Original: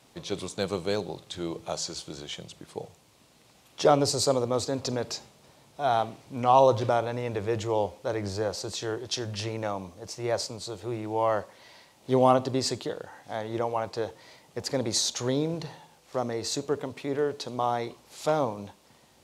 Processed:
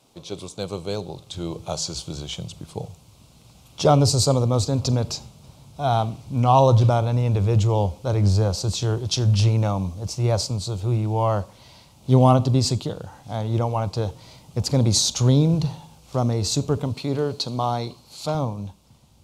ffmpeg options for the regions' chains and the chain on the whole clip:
-filter_complex "[0:a]asettb=1/sr,asplit=3[a][b][c];[a]atrim=end=16.944[d];[b]atrim=start=16.94:end=18.35,asetpts=PTS-STARTPTS,afade=t=in:d=0.004:c=qsin,afade=t=out:st=1.406:d=0.004:c=qsin,highpass=f=160:p=1,equalizer=f=4.3k:w=7.8:g=12[e];[c]atrim=start=18.346[f];[d][e]acrossfade=d=0.004:c1=hsin:c2=qsin[g];[g][f]acrossfade=d=0.004:c1=qsin:c2=hsin,asubboost=boost=6.5:cutoff=150,dynaudnorm=f=140:g=21:m=7dB,equalizer=f=1.8k:w=3.2:g=-14"

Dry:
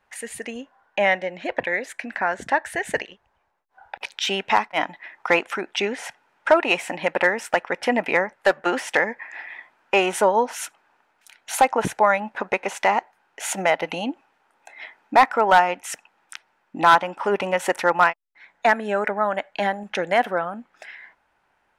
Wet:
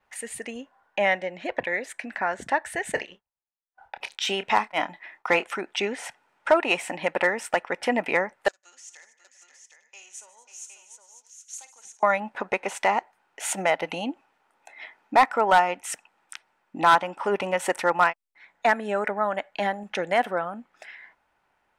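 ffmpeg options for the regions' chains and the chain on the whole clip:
-filter_complex "[0:a]asettb=1/sr,asplit=3[a][b][c];[a]atrim=end=2.924[d];[b]atrim=start=2.92:end=5.45,asetpts=PTS-STARTPTS,afade=t=in:d=0.004:c=qsin,afade=t=out:st=2.526:d=0.004:c=qsin,agate=range=-33dB:threshold=-51dB:ratio=3:release=100:detection=peak,asplit=2[e][f];[f]adelay=28,volume=-12dB[g];[e][g]amix=inputs=2:normalize=0,atrim=end_sample=111573[h];[c]atrim=start=5.446[i];[d][h]acrossfade=d=0.004:c1=hsin:c2=qsin[j];[j][i]acrossfade=d=0.004:c1=qsin:c2=hsin,asettb=1/sr,asplit=3[k][l][m];[k]atrim=end=8.484[n];[l]atrim=start=8.48:end=12.03,asetpts=PTS-STARTPTS,afade=t=in:d=0.004:c=qsin,afade=t=out:st=3.546:d=0.004:c=qsin,bandpass=f=6.6k:t=q:w=6.4,aecho=1:1:52|150|237|542|763|865:0.251|0.106|0.133|0.335|0.501|0.119,atrim=end_sample=156555[o];[m]atrim=start=12.026[p];[n][o]acrossfade=d=0.004:c1=hsin:c2=qsin[q];[q][p]acrossfade=d=0.004:c1=qsin:c2=hsin,bandreject=f=1.6k:w=22,adynamicequalizer=threshold=0.00224:dfrequency=8400:dqfactor=4.6:tfrequency=8400:tqfactor=4.6:attack=5:release=100:ratio=0.375:range=3:mode=boostabove:tftype=bell,volume=-3dB"

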